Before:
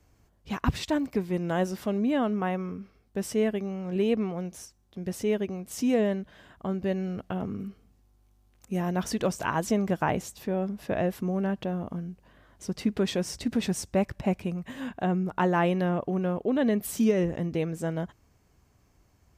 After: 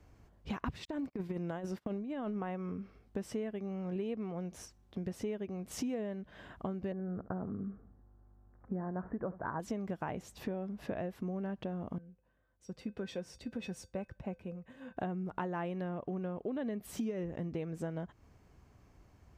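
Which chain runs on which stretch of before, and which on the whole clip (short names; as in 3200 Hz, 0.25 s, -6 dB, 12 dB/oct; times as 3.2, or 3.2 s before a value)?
0.85–2.81 gate -40 dBFS, range -31 dB + negative-ratio compressor -28 dBFS, ratio -0.5
6.92–9.6 steep low-pass 1700 Hz 48 dB/oct + echo 71 ms -17.5 dB
11.98–14.97 resonator 510 Hz, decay 0.16 s, harmonics odd, mix 80% + three-band expander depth 40%
whole clip: high shelf 4600 Hz -11.5 dB; compressor 6:1, threshold -38 dBFS; gain +2.5 dB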